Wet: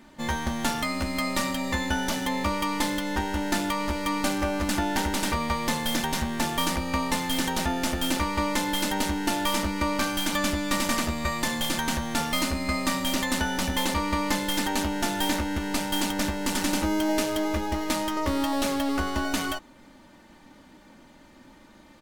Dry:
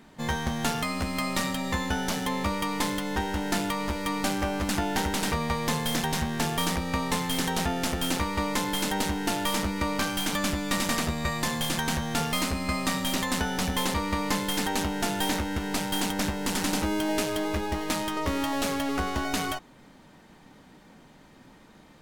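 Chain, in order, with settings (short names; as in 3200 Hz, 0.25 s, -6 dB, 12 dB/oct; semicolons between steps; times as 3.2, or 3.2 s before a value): comb 3.4 ms, depth 46%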